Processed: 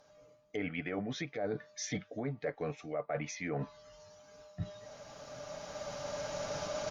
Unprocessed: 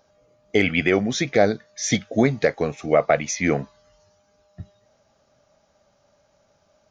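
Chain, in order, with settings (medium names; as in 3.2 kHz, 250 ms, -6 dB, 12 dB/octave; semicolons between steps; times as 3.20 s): recorder AGC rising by 9.7 dB/s; low-pass that closes with the level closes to 1.6 kHz, closed at -15.5 dBFS; bass shelf 330 Hz -4 dB; band-stop 380 Hz, Q 12; comb 6.8 ms, depth 37%; reverse; compression 8:1, threshold -32 dBFS, peak gain reduction 19.5 dB; reverse; trim -2 dB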